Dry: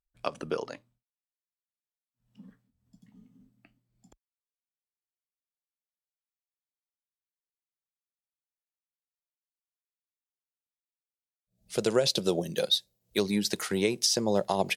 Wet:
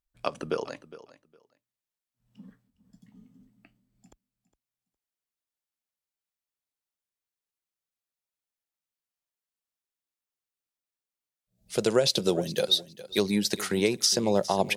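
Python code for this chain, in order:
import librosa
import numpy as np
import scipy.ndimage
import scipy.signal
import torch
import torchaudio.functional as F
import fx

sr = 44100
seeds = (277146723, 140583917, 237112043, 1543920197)

y = fx.echo_feedback(x, sr, ms=410, feedback_pct=18, wet_db=-17.0)
y = y * 10.0 ** (2.0 / 20.0)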